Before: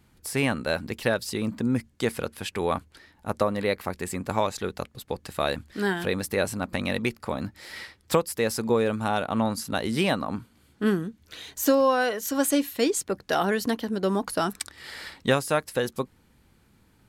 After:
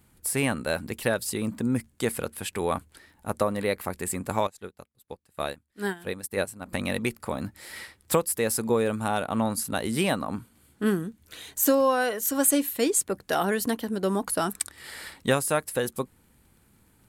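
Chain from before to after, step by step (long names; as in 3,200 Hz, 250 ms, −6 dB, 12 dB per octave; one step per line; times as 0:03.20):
high shelf with overshoot 7,000 Hz +6.5 dB, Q 1.5
surface crackle 21 per second −50 dBFS
0:04.47–0:06.66: expander for the loud parts 2.5 to 1, over −39 dBFS
level −1 dB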